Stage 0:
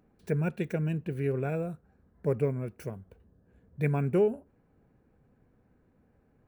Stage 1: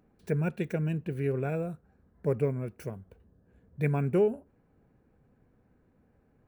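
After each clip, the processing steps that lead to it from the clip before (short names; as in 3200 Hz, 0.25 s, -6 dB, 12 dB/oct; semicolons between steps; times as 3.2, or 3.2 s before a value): nothing audible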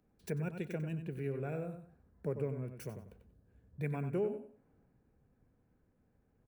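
on a send: feedback echo 94 ms, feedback 22%, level -9 dB; on the sum: compressor 2:1, threshold -46 dBFS, peak gain reduction 14 dB; three-band expander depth 40%; gain +2 dB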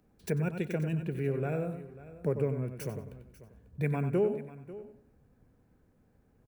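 echo 0.543 s -17 dB; gain +6.5 dB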